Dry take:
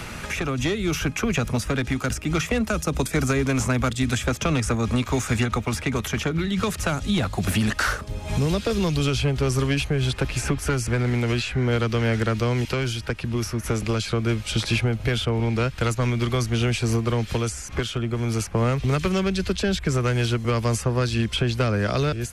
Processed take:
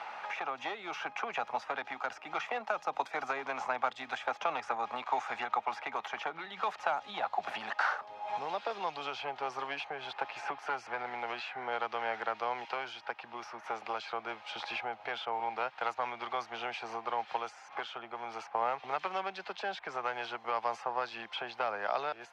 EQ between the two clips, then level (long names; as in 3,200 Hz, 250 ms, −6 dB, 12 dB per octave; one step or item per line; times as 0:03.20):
high-pass with resonance 810 Hz, resonance Q 5.7
high-frequency loss of the air 240 metres
−8.5 dB